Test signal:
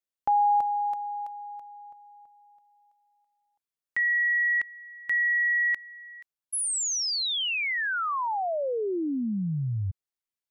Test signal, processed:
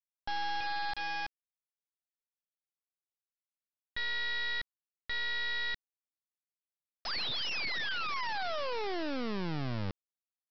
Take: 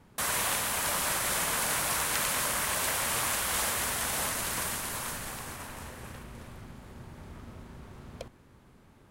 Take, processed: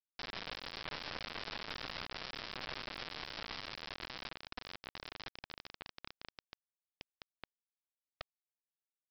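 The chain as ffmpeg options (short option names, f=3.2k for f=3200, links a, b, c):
-af "acompressor=threshold=-46dB:ratio=2.5:attack=0.29:release=220:detection=peak,aresample=11025,acrusher=bits=4:dc=4:mix=0:aa=0.000001,aresample=44100,volume=7dB"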